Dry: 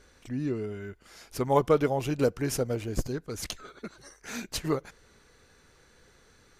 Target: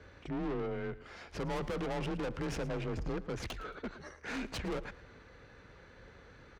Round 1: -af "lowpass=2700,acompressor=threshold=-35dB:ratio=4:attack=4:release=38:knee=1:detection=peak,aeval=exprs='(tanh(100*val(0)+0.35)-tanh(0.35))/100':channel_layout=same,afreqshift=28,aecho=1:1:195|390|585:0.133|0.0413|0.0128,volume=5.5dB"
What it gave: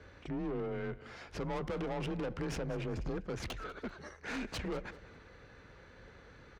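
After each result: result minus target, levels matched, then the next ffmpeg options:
echo 83 ms late; downward compressor: peak gain reduction +6 dB
-af "lowpass=2700,acompressor=threshold=-35dB:ratio=4:attack=4:release=38:knee=1:detection=peak,aeval=exprs='(tanh(100*val(0)+0.35)-tanh(0.35))/100':channel_layout=same,afreqshift=28,aecho=1:1:112|224|336:0.133|0.0413|0.0128,volume=5.5dB"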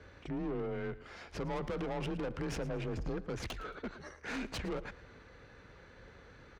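downward compressor: peak gain reduction +6 dB
-af "lowpass=2700,acompressor=threshold=-27dB:ratio=4:attack=4:release=38:knee=1:detection=peak,aeval=exprs='(tanh(100*val(0)+0.35)-tanh(0.35))/100':channel_layout=same,afreqshift=28,aecho=1:1:112|224|336:0.133|0.0413|0.0128,volume=5.5dB"

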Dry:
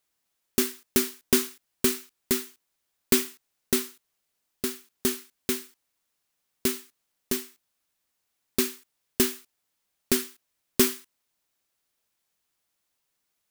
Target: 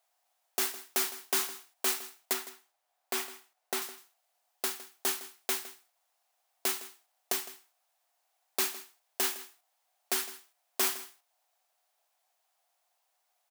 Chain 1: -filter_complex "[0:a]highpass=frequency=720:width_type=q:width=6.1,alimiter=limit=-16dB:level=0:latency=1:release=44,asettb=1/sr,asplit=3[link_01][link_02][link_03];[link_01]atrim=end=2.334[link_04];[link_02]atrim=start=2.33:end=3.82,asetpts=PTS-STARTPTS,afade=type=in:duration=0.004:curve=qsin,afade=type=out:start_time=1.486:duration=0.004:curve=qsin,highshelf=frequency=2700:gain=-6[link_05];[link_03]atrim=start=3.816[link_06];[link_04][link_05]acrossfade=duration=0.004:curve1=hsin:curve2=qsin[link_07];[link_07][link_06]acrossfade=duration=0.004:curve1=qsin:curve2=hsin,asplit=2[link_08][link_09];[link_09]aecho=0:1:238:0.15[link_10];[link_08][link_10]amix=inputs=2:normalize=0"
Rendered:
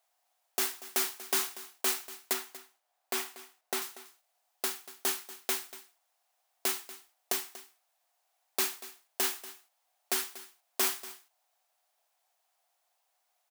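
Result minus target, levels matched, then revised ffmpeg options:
echo 78 ms late
-filter_complex "[0:a]highpass=frequency=720:width_type=q:width=6.1,alimiter=limit=-16dB:level=0:latency=1:release=44,asettb=1/sr,asplit=3[link_01][link_02][link_03];[link_01]atrim=end=2.334[link_04];[link_02]atrim=start=2.33:end=3.82,asetpts=PTS-STARTPTS,afade=type=in:duration=0.004:curve=qsin,afade=type=out:start_time=1.486:duration=0.004:curve=qsin,highshelf=frequency=2700:gain=-6[link_05];[link_03]atrim=start=3.816[link_06];[link_04][link_05]acrossfade=duration=0.004:curve1=hsin:curve2=qsin[link_07];[link_07][link_06]acrossfade=duration=0.004:curve1=qsin:curve2=hsin,asplit=2[link_08][link_09];[link_09]aecho=0:1:160:0.15[link_10];[link_08][link_10]amix=inputs=2:normalize=0"

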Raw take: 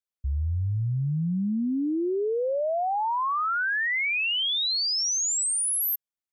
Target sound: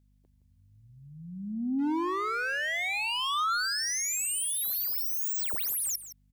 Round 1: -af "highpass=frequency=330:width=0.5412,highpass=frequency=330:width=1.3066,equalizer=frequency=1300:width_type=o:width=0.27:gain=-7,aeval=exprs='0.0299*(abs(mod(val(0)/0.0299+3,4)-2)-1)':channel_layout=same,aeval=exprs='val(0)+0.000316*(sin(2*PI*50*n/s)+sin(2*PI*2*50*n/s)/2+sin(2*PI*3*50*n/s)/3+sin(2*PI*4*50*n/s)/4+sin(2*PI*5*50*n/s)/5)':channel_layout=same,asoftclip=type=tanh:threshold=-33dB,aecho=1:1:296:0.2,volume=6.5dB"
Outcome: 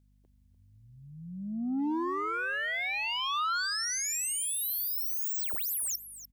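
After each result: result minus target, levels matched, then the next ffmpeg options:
echo 129 ms late; soft clipping: distortion +12 dB
-af "highpass=frequency=330:width=0.5412,highpass=frequency=330:width=1.3066,equalizer=frequency=1300:width_type=o:width=0.27:gain=-7,aeval=exprs='0.0299*(abs(mod(val(0)/0.0299+3,4)-2)-1)':channel_layout=same,aeval=exprs='val(0)+0.000316*(sin(2*PI*50*n/s)+sin(2*PI*2*50*n/s)/2+sin(2*PI*3*50*n/s)/3+sin(2*PI*4*50*n/s)/4+sin(2*PI*5*50*n/s)/5)':channel_layout=same,asoftclip=type=tanh:threshold=-33dB,aecho=1:1:167:0.2,volume=6.5dB"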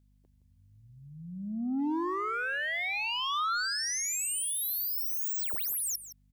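soft clipping: distortion +12 dB
-af "highpass=frequency=330:width=0.5412,highpass=frequency=330:width=1.3066,equalizer=frequency=1300:width_type=o:width=0.27:gain=-7,aeval=exprs='0.0299*(abs(mod(val(0)/0.0299+3,4)-2)-1)':channel_layout=same,aeval=exprs='val(0)+0.000316*(sin(2*PI*50*n/s)+sin(2*PI*2*50*n/s)/2+sin(2*PI*3*50*n/s)/3+sin(2*PI*4*50*n/s)/4+sin(2*PI*5*50*n/s)/5)':channel_layout=same,asoftclip=type=tanh:threshold=-26dB,aecho=1:1:167:0.2,volume=6.5dB"

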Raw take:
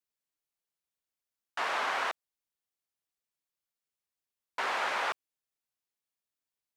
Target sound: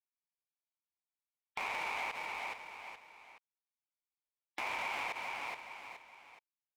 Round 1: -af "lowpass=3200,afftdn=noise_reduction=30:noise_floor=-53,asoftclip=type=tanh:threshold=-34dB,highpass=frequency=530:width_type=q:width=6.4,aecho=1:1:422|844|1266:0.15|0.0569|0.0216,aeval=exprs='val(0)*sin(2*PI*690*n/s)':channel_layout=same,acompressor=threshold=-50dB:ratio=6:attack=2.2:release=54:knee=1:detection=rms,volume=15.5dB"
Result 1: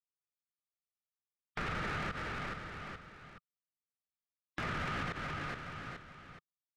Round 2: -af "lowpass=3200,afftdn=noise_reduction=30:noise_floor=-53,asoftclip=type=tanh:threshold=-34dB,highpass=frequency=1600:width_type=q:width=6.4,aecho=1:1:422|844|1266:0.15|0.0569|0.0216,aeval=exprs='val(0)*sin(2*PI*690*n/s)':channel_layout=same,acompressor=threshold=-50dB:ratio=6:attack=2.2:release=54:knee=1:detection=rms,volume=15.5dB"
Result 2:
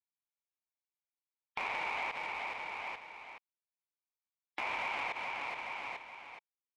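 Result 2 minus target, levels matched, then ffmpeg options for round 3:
soft clipping: distortion −5 dB
-af "lowpass=3200,afftdn=noise_reduction=30:noise_floor=-53,asoftclip=type=tanh:threshold=-43.5dB,highpass=frequency=1600:width_type=q:width=6.4,aecho=1:1:422|844|1266:0.15|0.0569|0.0216,aeval=exprs='val(0)*sin(2*PI*690*n/s)':channel_layout=same,acompressor=threshold=-50dB:ratio=6:attack=2.2:release=54:knee=1:detection=rms,volume=15.5dB"

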